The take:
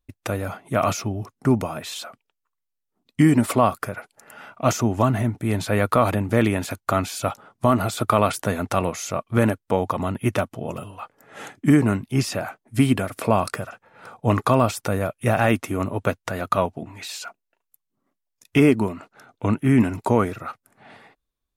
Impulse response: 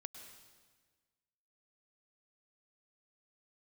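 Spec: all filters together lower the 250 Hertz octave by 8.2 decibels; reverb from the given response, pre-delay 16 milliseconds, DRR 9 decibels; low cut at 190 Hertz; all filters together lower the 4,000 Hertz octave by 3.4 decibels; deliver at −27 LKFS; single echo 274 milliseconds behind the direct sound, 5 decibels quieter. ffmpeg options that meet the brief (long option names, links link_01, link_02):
-filter_complex "[0:a]highpass=190,equalizer=frequency=250:width_type=o:gain=-8.5,equalizer=frequency=4000:width_type=o:gain=-4.5,aecho=1:1:274:0.562,asplit=2[link_01][link_02];[1:a]atrim=start_sample=2205,adelay=16[link_03];[link_02][link_03]afir=irnorm=-1:irlink=0,volume=-4.5dB[link_04];[link_01][link_04]amix=inputs=2:normalize=0,volume=-2dB"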